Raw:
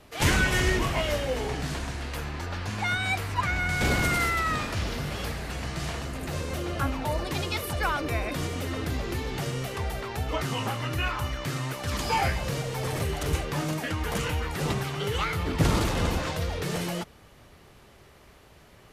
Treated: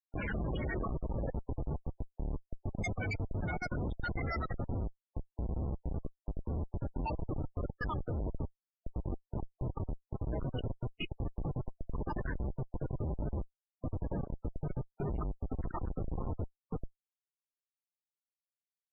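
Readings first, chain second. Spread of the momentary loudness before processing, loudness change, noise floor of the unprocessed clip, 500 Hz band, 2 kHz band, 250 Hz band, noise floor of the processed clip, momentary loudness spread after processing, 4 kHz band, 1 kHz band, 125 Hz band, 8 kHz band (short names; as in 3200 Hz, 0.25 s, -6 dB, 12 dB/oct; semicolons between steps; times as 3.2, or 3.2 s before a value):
9 LU, -11.0 dB, -54 dBFS, -11.0 dB, -16.5 dB, -8.5 dB, under -85 dBFS, 7 LU, -22.5 dB, -14.5 dB, -8.0 dB, under -25 dB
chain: random spectral dropouts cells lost 68%; reverse echo 0.102 s -12.5 dB; Schmitt trigger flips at -30 dBFS; loudest bins only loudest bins 32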